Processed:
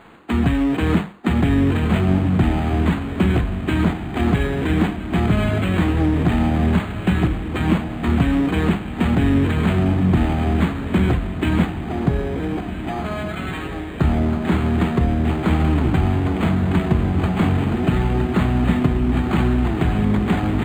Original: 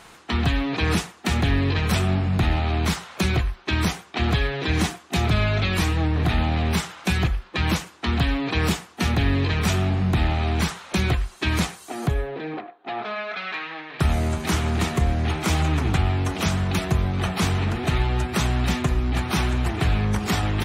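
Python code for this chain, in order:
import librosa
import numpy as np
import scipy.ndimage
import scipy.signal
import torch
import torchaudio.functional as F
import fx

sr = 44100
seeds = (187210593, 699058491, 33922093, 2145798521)

y = fx.peak_eq(x, sr, hz=240.0, db=8.0, octaves=1.5)
y = fx.hum_notches(y, sr, base_hz=50, count=4)
y = fx.echo_diffused(y, sr, ms=1468, feedback_pct=49, wet_db=-9)
y = np.interp(np.arange(len(y)), np.arange(len(y))[::8], y[::8])
y = F.gain(torch.from_numpy(y), 1.0).numpy()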